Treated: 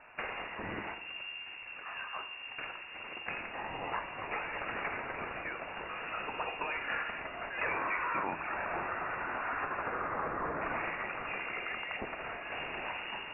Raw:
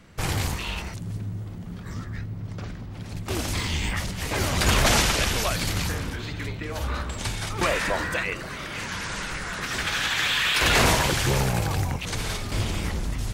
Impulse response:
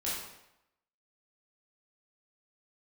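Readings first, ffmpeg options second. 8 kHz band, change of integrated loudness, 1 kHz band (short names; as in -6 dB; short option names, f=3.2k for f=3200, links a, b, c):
under -40 dB, -12.0 dB, -6.0 dB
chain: -filter_complex "[0:a]highpass=f=680:p=1,aemphasis=mode=production:type=75kf,acompressor=threshold=-31dB:ratio=5,asplit=2[a][b];[1:a]atrim=start_sample=2205,asetrate=37926,aresample=44100[c];[b][c]afir=irnorm=-1:irlink=0,volume=-12dB[d];[a][d]amix=inputs=2:normalize=0,lowpass=f=2.5k:t=q:w=0.5098,lowpass=f=2.5k:t=q:w=0.6013,lowpass=f=2.5k:t=q:w=0.9,lowpass=f=2.5k:t=q:w=2.563,afreqshift=-2900"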